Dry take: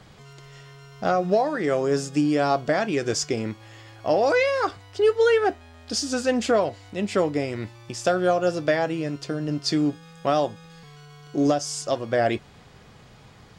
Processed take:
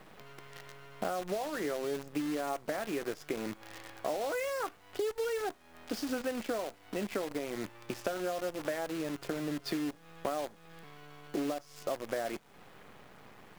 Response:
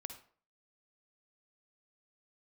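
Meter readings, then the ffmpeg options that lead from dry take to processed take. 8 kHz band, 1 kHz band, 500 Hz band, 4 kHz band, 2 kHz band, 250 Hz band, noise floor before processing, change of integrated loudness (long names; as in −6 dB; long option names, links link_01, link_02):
−13.0 dB, −13.0 dB, −13.0 dB, −12.5 dB, −12.0 dB, −11.5 dB, −50 dBFS, −12.5 dB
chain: -filter_complex "[0:a]acrossover=split=180 3000:gain=0.141 1 0.0794[link_01][link_02][link_03];[link_01][link_02][link_03]amix=inputs=3:normalize=0,acompressor=threshold=-35dB:ratio=8,acrusher=bits=8:dc=4:mix=0:aa=0.000001,volume=2.5dB"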